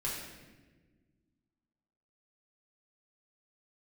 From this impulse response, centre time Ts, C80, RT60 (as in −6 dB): 66 ms, 4.0 dB, 1.4 s